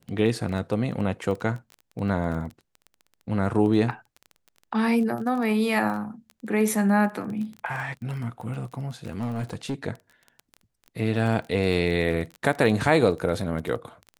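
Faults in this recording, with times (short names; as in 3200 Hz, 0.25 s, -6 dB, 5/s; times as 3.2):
crackle 19/s -32 dBFS
9.07–9.74 clipped -24 dBFS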